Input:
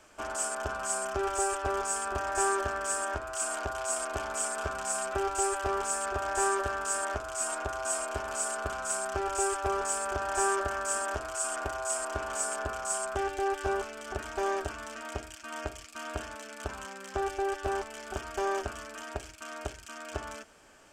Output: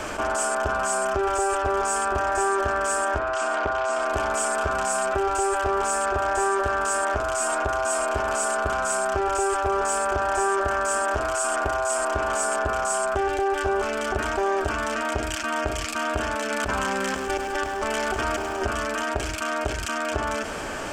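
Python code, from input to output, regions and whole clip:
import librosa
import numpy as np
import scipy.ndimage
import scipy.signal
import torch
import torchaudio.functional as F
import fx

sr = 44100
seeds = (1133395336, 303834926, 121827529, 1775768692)

y = fx.chain(x, sr, fx.lowpass(hz=4400.0, slope=12),
    fx.low_shelf(hz=160.0, db=-6.5),
    fx.doppler_dist(depth_ms=0.18), at=(3.19, 4.06))
y = fx.chain(y, sr, fx.over_compress(threshold_db=-39.0, ratio=-0.5),
    fx.echo_crushed(ms=103, feedback_pct=80, bits=10, wet_db=-15.0), at=(16.5, 18.66))
y = fx.high_shelf(y, sr, hz=3300.0, db=-7.5)
y = fx.env_flatten(y, sr, amount_pct=70)
y = y * 10.0 ** (5.0 / 20.0)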